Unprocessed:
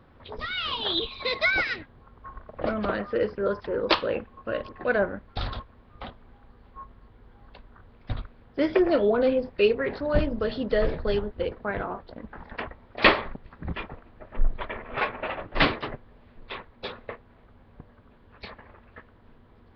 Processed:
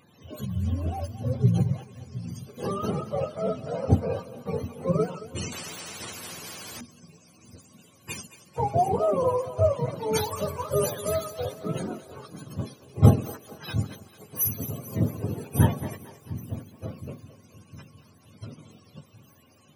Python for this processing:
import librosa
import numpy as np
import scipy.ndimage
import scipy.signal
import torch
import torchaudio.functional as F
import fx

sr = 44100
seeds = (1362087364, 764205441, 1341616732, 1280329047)

p1 = fx.octave_mirror(x, sr, pivot_hz=510.0)
p2 = p1 + fx.echo_split(p1, sr, split_hz=340.0, low_ms=712, high_ms=222, feedback_pct=52, wet_db=-15.0, dry=0)
y = fx.spectral_comp(p2, sr, ratio=4.0, at=(5.52, 6.81))